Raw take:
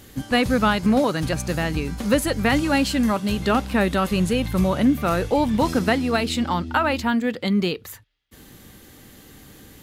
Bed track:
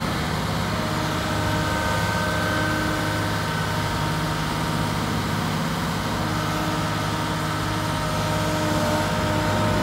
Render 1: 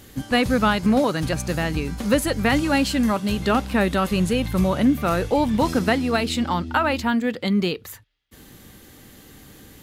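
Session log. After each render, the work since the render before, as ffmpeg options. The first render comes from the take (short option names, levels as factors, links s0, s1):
-af anull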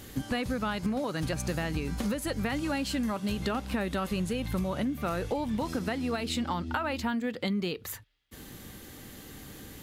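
-af "alimiter=limit=0.237:level=0:latency=1:release=369,acompressor=threshold=0.0398:ratio=6"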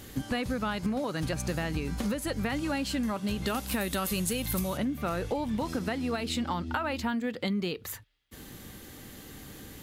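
-filter_complex "[0:a]asplit=3[s0][s1][s2];[s0]afade=t=out:st=3.46:d=0.02[s3];[s1]aemphasis=mode=production:type=75fm,afade=t=in:st=3.46:d=0.02,afade=t=out:st=4.76:d=0.02[s4];[s2]afade=t=in:st=4.76:d=0.02[s5];[s3][s4][s5]amix=inputs=3:normalize=0"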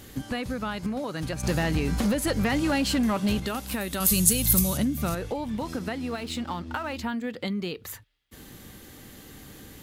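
-filter_complex "[0:a]asettb=1/sr,asplit=3[s0][s1][s2];[s0]atrim=end=1.434[s3];[s1]atrim=start=1.43:end=3.4,asetpts=PTS-STARTPTS,afade=t=in:d=0.004:c=qsin,afade=t=out:st=1.966:d=0.004:c=qsin,aeval=exprs='0.112*sin(PI/2*1.58*val(0)/0.112)':c=same[s4];[s2]atrim=start=3.396[s5];[s3][s4]acrossfade=d=0.004:c1=hsin:c2=qsin[s6];[s6][s5]acrossfade=d=0.004:c1=qsin:c2=hsin,asettb=1/sr,asplit=3[s7][s8][s9];[s7]atrim=end=4.004[s10];[s8]atrim=start=4:end=5.15,asetpts=PTS-STARTPTS,afade=t=in:d=0.004:c=qsin,afade=t=out:st=1.146:d=0.004:c=qsin,bass=f=250:g=9,treble=f=4000:g=14[s11];[s9]atrim=start=5.146[s12];[s10][s11]acrossfade=d=0.004:c1=hsin:c2=qsin[s13];[s13][s12]acrossfade=d=0.004:c1=qsin:c2=hsin,asettb=1/sr,asplit=3[s14][s15][s16];[s14]atrim=end=6.064[s17];[s15]atrim=start=6.06:end=6.96,asetpts=PTS-STARTPTS,afade=t=in:d=0.004:c=qsin,afade=t=out:st=0.896:d=0.004:c=qsin,aeval=exprs='sgn(val(0))*max(abs(val(0))-0.00398,0)':c=same[s18];[s16]atrim=start=6.956[s19];[s17][s18]acrossfade=d=0.004:c1=hsin:c2=qsin[s20];[s20][s19]acrossfade=d=0.004:c1=qsin:c2=hsin"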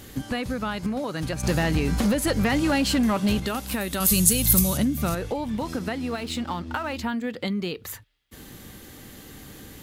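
-af "volume=1.33,alimiter=limit=0.708:level=0:latency=1"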